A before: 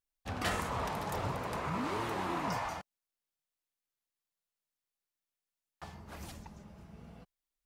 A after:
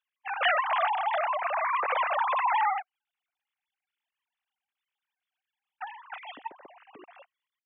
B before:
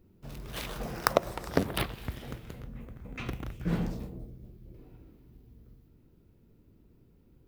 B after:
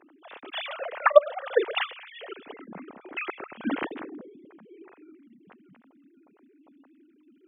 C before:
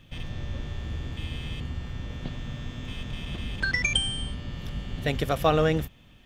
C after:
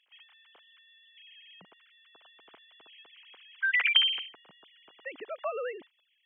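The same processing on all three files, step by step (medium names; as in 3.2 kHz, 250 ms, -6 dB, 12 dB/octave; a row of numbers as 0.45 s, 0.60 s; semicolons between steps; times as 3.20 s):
formants replaced by sine waves; high-pass 340 Hz 6 dB/octave; treble shelf 2.8 kHz +7 dB; normalise loudness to -27 LUFS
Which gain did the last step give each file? +8.5 dB, +6.5 dB, -8.5 dB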